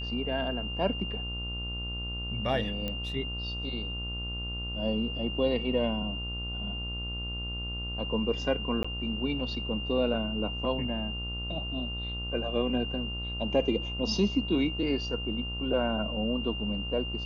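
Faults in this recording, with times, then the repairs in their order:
mains buzz 60 Hz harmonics 24 −37 dBFS
whistle 2,800 Hz −36 dBFS
0:02.88: click −20 dBFS
0:08.83–0:08.85: drop-out 15 ms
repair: click removal
hum removal 60 Hz, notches 24
notch filter 2,800 Hz, Q 30
repair the gap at 0:08.83, 15 ms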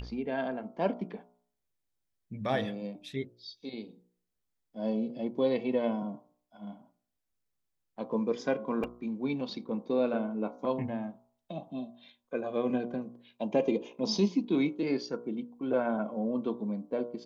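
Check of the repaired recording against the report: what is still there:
0:02.88: click

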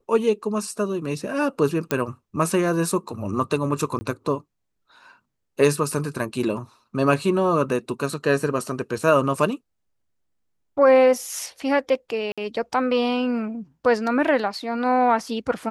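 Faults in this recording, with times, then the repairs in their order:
0:01.91: click −8 dBFS
0:03.99–0:04.01: drop-out 20 ms
0:12.32–0:12.38: drop-out 56 ms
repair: click removal
repair the gap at 0:03.99, 20 ms
repair the gap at 0:12.32, 56 ms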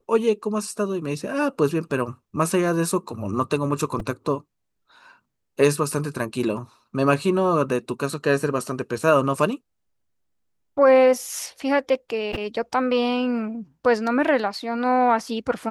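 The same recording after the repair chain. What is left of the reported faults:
none of them is left

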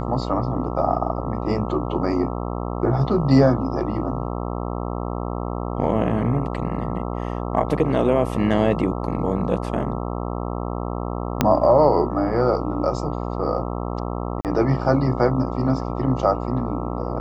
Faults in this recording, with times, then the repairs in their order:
mains buzz 60 Hz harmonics 22 −27 dBFS
0:11.41: click −2 dBFS
0:14.41–0:14.45: drop-out 38 ms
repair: click removal
hum removal 60 Hz, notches 22
repair the gap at 0:14.41, 38 ms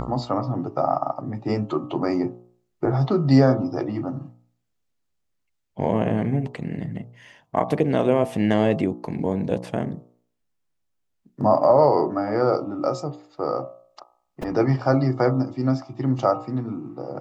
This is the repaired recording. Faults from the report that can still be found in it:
0:11.41: click

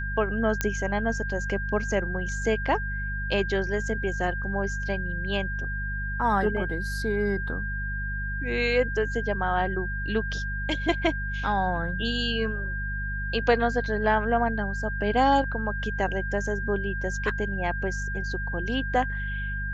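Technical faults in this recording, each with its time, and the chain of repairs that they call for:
mains hum 50 Hz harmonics 4 −32 dBFS
whistle 1,600 Hz −32 dBFS
0:00.61: click −9 dBFS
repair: click removal
notch filter 1,600 Hz, Q 30
hum removal 50 Hz, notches 4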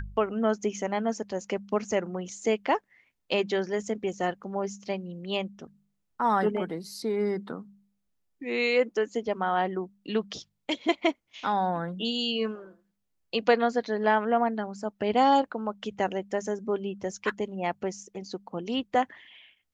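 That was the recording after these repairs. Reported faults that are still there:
none of them is left

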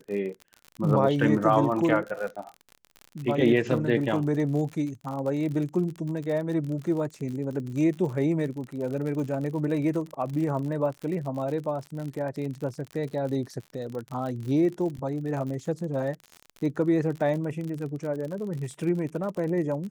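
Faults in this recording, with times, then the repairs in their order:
surface crackle 53 per second −33 dBFS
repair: click removal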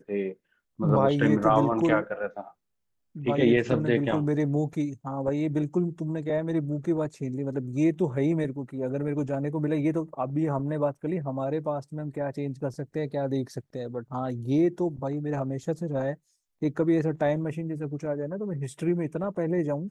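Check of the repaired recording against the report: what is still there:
none of them is left

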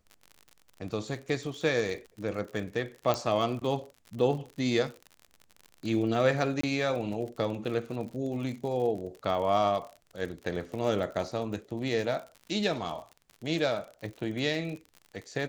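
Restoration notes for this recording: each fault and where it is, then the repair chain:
surface crackle 58 per second −37 dBFS
0:03.14: click −14 dBFS
0:06.61–0:06.63: drop-out 24 ms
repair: click removal
repair the gap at 0:06.61, 24 ms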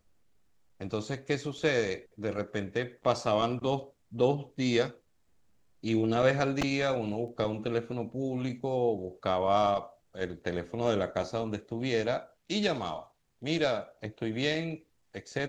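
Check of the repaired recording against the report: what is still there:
none of them is left

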